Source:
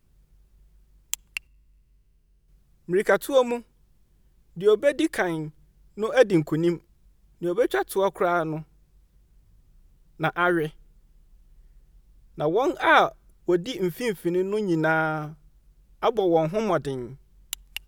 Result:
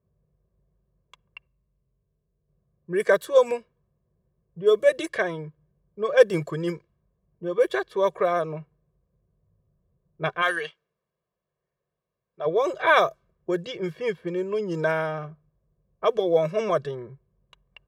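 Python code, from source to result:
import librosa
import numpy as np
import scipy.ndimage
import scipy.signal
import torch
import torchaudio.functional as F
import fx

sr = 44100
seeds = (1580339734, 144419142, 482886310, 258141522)

y = fx.weighting(x, sr, curve='ITU-R 468', at=(10.41, 12.45), fade=0.02)
y = fx.env_lowpass(y, sr, base_hz=730.0, full_db=-17.0)
y = scipy.signal.sosfilt(scipy.signal.butter(2, 130.0, 'highpass', fs=sr, output='sos'), y)
y = y + 0.8 * np.pad(y, (int(1.8 * sr / 1000.0), 0))[:len(y)]
y = F.gain(torch.from_numpy(y), -2.5).numpy()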